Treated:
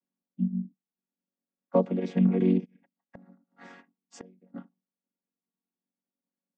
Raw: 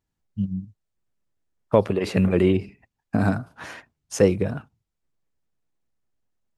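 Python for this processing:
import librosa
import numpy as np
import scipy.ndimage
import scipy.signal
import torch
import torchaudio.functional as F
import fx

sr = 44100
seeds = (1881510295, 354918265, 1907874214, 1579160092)

y = fx.chord_vocoder(x, sr, chord='major triad', root=54)
y = fx.gate_flip(y, sr, shuts_db=-27.0, range_db=-31, at=(2.64, 4.54), fade=0.02)
y = y * 10.0 ** (-3.0 / 20.0)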